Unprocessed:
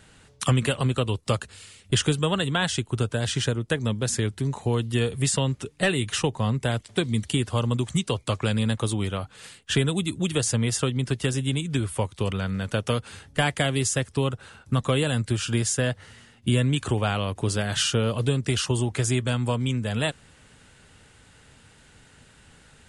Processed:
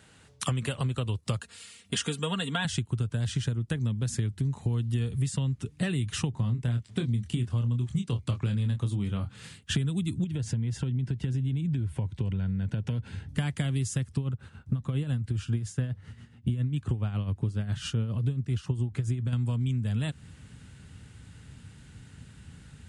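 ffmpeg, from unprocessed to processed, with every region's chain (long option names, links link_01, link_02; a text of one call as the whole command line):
ffmpeg -i in.wav -filter_complex "[0:a]asettb=1/sr,asplit=3[link_01][link_02][link_03];[link_01]atrim=end=1.414[link_04];[link_02]atrim=start=1.41:end=2.65,asetpts=PTS-STARTPTS,afade=type=in:duration=0.004:curve=qsin,afade=type=out:start_time=1.236:duration=0.004:curve=qsin,highpass=frequency=400:poles=1,aecho=1:1:4.3:0.69,atrim=end_sample=54684[link_05];[link_03]atrim=start=2.646[link_06];[link_04][link_05]acrossfade=duration=0.004:curve1=hsin:curve2=qsin[link_07];[link_07][link_06]acrossfade=duration=0.004:curve1=qsin:curve2=hsin,asettb=1/sr,asplit=3[link_08][link_09][link_10];[link_08]atrim=end=6.314[link_11];[link_09]atrim=start=6.31:end=9.56,asetpts=PTS-STARTPTS,afade=type=in:duration=0.004:curve=qsin,afade=type=out:start_time=3.246:duration=0.004:curve=qsin,highshelf=frequency=10000:gain=-8.5,asplit=2[link_12][link_13];[link_13]adelay=25,volume=-6.5dB[link_14];[link_12][link_14]amix=inputs=2:normalize=0,atrim=end_sample=143325[link_15];[link_10]atrim=start=9.556[link_16];[link_11][link_15]acrossfade=duration=0.004:curve1=hsin:curve2=qsin[link_17];[link_17][link_16]acrossfade=duration=0.004:curve1=qsin:curve2=hsin,asettb=1/sr,asplit=3[link_18][link_19][link_20];[link_18]atrim=end=10.244[link_21];[link_19]atrim=start=10.24:end=13.29,asetpts=PTS-STARTPTS,afade=type=in:duration=0.004:curve=qsin,afade=type=out:start_time=3.046:duration=0.004:curve=qsin,asuperstop=centerf=1200:order=4:qfactor=4.8,aemphasis=mode=reproduction:type=75fm,acompressor=threshold=-30dB:ratio=3:attack=3.2:release=140:knee=1:detection=peak[link_22];[link_20]atrim=start=13.286[link_23];[link_21][link_22]acrossfade=duration=0.004:curve1=hsin:curve2=qsin[link_24];[link_24][link_23]acrossfade=duration=0.004:curve1=qsin:curve2=hsin,asettb=1/sr,asplit=3[link_25][link_26][link_27];[link_25]atrim=end=14.174[link_28];[link_26]atrim=start=14.17:end=19.33,asetpts=PTS-STARTPTS,afade=type=in:duration=0.004:curve=qsin,afade=type=out:start_time=5.156:duration=0.004:curve=qsin,highshelf=frequency=3000:gain=-8.5,tremolo=f=7.3:d=0.63[link_29];[link_27]atrim=start=19.326[link_30];[link_28][link_29]acrossfade=duration=0.004:curve1=hsin:curve2=qsin[link_31];[link_31][link_30]acrossfade=duration=0.004:curve1=qsin:curve2=hsin,highpass=75,asubboost=boost=6:cutoff=210,acompressor=threshold=-23dB:ratio=6,volume=-3dB" out.wav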